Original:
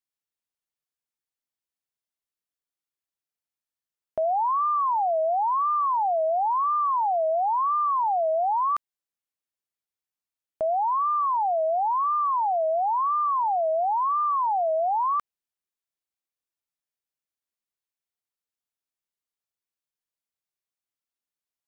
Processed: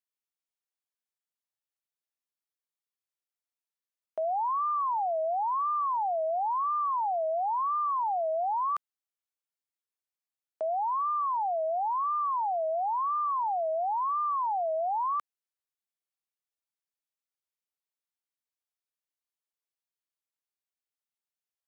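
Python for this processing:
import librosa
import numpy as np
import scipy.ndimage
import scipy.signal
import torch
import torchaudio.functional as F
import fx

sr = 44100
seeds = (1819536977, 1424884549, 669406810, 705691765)

y = scipy.signal.sosfilt(scipy.signal.butter(2, 400.0, 'highpass', fs=sr, output='sos'), x)
y = F.gain(torch.from_numpy(y), -5.0).numpy()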